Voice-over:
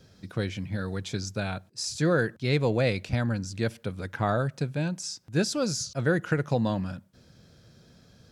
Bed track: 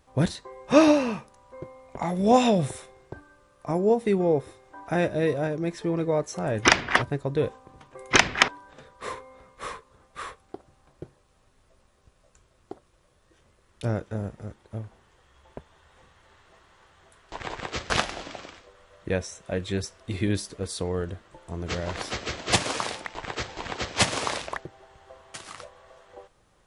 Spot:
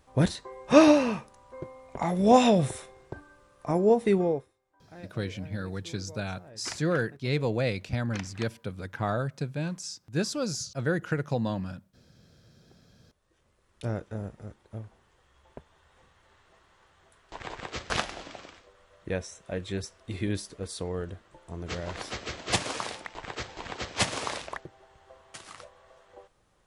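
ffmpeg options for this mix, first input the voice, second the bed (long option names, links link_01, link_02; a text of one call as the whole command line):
ffmpeg -i stem1.wav -i stem2.wav -filter_complex "[0:a]adelay=4800,volume=-3dB[link_01];[1:a]volume=18.5dB,afade=type=out:start_time=4.16:duration=0.32:silence=0.0707946,afade=type=in:start_time=12.75:duration=1.04:silence=0.11885[link_02];[link_01][link_02]amix=inputs=2:normalize=0" out.wav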